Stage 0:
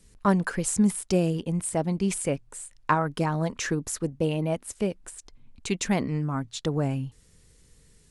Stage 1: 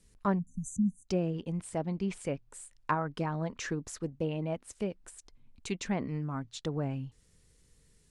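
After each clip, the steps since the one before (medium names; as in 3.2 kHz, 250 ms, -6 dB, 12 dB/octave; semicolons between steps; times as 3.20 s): spectral selection erased 0.39–1.07 s, 270–5900 Hz; low-pass that closes with the level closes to 2.3 kHz, closed at -19.5 dBFS; trim -7 dB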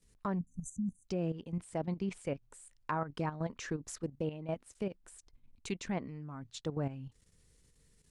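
level held to a coarse grid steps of 11 dB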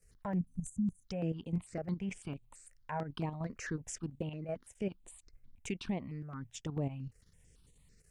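peak limiter -28 dBFS, peak gain reduction 7 dB; stepped phaser 9 Hz 960–5200 Hz; trim +3.5 dB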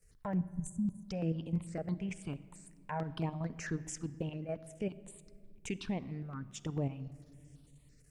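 simulated room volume 3500 m³, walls mixed, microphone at 0.43 m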